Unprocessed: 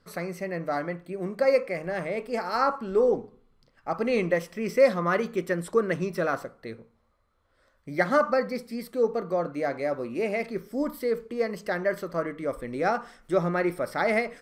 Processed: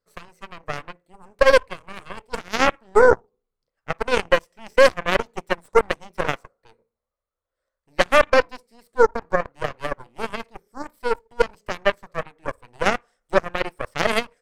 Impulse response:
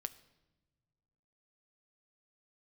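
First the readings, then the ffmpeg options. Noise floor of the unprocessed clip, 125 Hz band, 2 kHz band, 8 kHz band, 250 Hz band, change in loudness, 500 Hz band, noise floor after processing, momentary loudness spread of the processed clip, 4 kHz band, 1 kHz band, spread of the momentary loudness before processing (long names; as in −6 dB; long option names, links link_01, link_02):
−68 dBFS, −1.5 dB, +8.0 dB, +9.5 dB, −3.0 dB, +6.0 dB, +4.5 dB, −85 dBFS, 18 LU, +13.5 dB, +6.0 dB, 10 LU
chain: -af "equalizer=frequency=125:width_type=o:width=1:gain=-4,equalizer=frequency=250:width_type=o:width=1:gain=-6,equalizer=frequency=500:width_type=o:width=1:gain=7,equalizer=frequency=8000:width_type=o:width=1:gain=7,apsyclip=12dB,aeval=exprs='1.06*(cos(1*acos(clip(val(0)/1.06,-1,1)))-cos(1*PI/2))+0.299*(cos(2*acos(clip(val(0)/1.06,-1,1)))-cos(2*PI/2))+0.376*(cos(3*acos(clip(val(0)/1.06,-1,1)))-cos(3*PI/2))':channel_layout=same,volume=-7dB"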